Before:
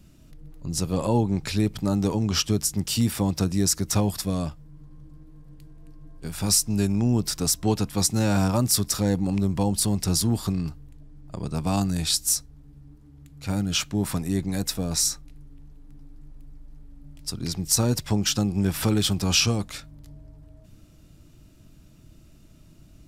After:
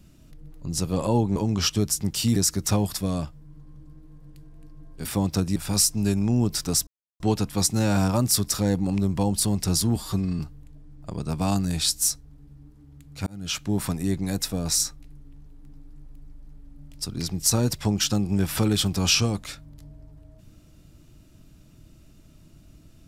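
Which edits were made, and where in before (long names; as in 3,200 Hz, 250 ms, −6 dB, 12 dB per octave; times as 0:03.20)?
0:01.36–0:02.09: remove
0:03.09–0:03.60: move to 0:06.29
0:07.60: splice in silence 0.33 s
0:10.36–0:10.65: time-stretch 1.5×
0:13.52–0:13.92: fade in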